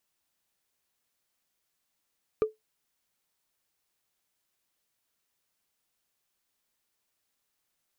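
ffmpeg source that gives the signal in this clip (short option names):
-f lavfi -i "aevalsrc='0.141*pow(10,-3*t/0.16)*sin(2*PI*434*t)+0.0398*pow(10,-3*t/0.047)*sin(2*PI*1196.5*t)+0.0112*pow(10,-3*t/0.021)*sin(2*PI*2345.3*t)+0.00316*pow(10,-3*t/0.012)*sin(2*PI*3876.9*t)+0.000891*pow(10,-3*t/0.007)*sin(2*PI*5789.6*t)':d=0.45:s=44100"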